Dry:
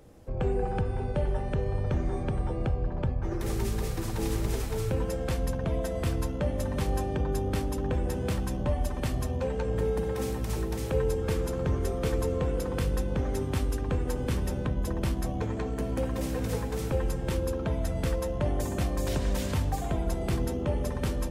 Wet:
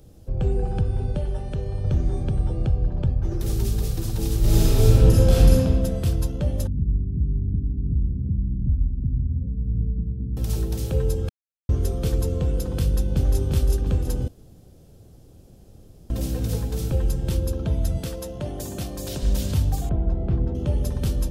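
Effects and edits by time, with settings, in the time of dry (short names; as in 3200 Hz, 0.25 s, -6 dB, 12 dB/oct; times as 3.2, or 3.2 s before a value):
1.17–1.84 low shelf 330 Hz -5.5 dB
4.39–5.53 reverb throw, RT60 1.9 s, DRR -9 dB
6.67–10.37 inverse Chebyshev low-pass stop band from 1500 Hz, stop band 80 dB
11.29–11.69 mute
12.81–13.41 echo throw 0.35 s, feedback 55%, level -4.5 dB
14.28–16.1 room tone
17.98–19.23 HPF 250 Hz 6 dB/oct
19.89–20.55 LPF 1400 Hz
whole clip: graphic EQ 250/500/1000/2000/8000 Hz -5/-6/-11/-12/-4 dB; gain +8 dB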